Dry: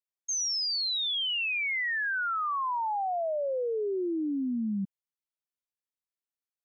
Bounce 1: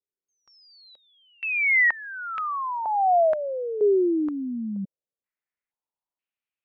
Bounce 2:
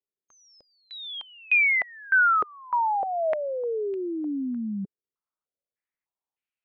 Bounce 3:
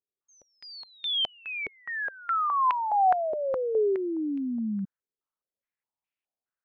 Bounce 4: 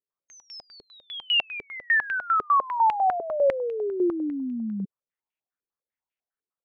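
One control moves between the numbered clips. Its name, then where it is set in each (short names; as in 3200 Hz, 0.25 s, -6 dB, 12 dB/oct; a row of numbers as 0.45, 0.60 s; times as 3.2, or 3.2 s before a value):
stepped low-pass, rate: 2.1, 3.3, 4.8, 10 Hz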